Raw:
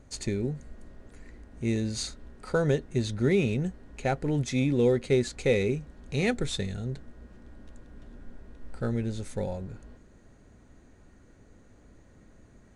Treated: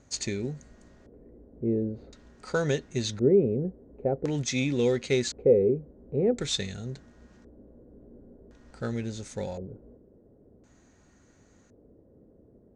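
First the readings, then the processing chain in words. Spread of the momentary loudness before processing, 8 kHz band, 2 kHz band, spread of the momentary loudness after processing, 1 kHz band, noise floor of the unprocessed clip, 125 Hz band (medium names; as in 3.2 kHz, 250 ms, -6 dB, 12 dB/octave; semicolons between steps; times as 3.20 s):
12 LU, +3.5 dB, -2.5 dB, 15 LU, -3.5 dB, -56 dBFS, -3.0 dB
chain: high-pass 94 Hz 6 dB/octave; dynamic bell 2.8 kHz, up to +5 dB, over -46 dBFS, Q 0.75; LFO low-pass square 0.47 Hz 470–6500 Hz; trim -1.5 dB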